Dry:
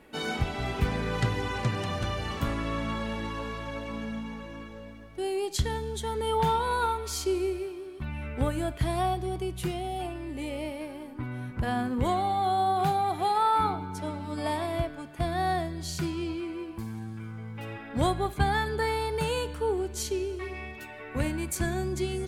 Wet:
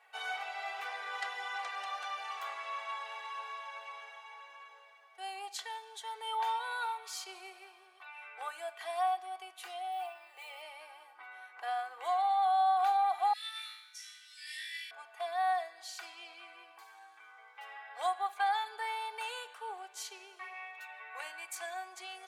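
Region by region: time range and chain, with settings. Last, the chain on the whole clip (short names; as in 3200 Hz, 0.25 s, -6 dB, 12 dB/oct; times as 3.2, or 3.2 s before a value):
9.92–10.62 brick-wall FIR high-pass 340 Hz + careless resampling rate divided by 2×, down none, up hold
13.33–14.91 Chebyshev high-pass 1800 Hz, order 5 + bell 5700 Hz +11.5 dB 0.25 oct + flutter echo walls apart 3.1 m, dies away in 0.76 s
whole clip: steep high-pass 650 Hz 36 dB/oct; high shelf 5500 Hz -8.5 dB; comb 2.6 ms, depth 64%; gain -5 dB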